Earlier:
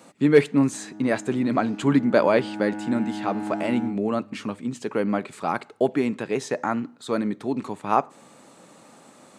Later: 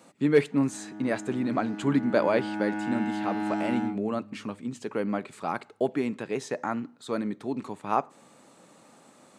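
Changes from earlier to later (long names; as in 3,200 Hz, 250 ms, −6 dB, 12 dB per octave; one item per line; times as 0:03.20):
speech −5.0 dB
background: add parametric band 3,100 Hz +7 dB 2.8 octaves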